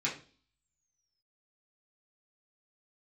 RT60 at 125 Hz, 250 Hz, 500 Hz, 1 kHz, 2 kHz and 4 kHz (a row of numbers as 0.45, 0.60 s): 0.55, 0.55, 0.45, 0.35, 0.35, 0.50 s